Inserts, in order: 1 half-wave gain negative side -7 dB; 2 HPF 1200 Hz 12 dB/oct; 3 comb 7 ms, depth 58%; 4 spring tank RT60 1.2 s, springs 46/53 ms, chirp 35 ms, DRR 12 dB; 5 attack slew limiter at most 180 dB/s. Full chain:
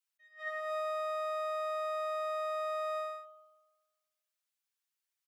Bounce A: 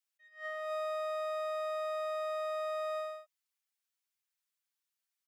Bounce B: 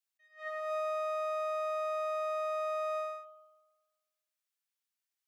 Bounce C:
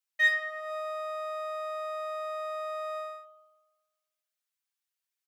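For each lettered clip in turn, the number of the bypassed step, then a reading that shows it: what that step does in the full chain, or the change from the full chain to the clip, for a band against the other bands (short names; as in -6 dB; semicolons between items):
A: 4, 1 kHz band -3.5 dB; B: 3, 500 Hz band +3.5 dB; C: 5, crest factor change +10.5 dB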